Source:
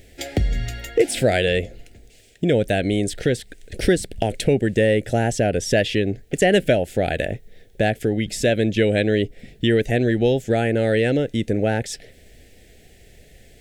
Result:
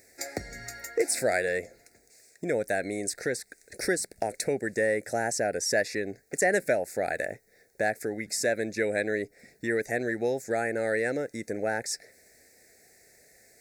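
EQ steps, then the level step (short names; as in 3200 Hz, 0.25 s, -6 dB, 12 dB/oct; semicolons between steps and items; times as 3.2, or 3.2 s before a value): HPF 1200 Hz 6 dB/oct; Butterworth band-stop 3100 Hz, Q 1.2; 0.0 dB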